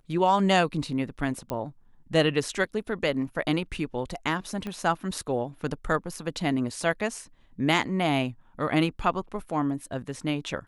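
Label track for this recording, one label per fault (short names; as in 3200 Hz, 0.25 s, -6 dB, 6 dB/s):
1.500000	1.500000	pop -17 dBFS
4.670000	4.670000	pop -21 dBFS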